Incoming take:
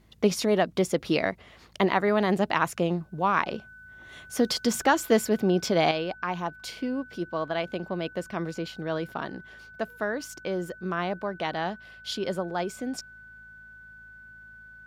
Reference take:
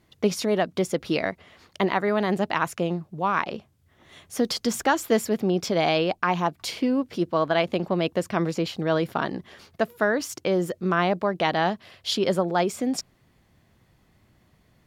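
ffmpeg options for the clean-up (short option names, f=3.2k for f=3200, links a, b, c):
-af "bandreject=f=54.5:t=h:w=4,bandreject=f=109:t=h:w=4,bandreject=f=163.5:t=h:w=4,bandreject=f=218:t=h:w=4,bandreject=f=1.5k:w=30,asetnsamples=n=441:p=0,asendcmd='5.91 volume volume 7dB',volume=0dB"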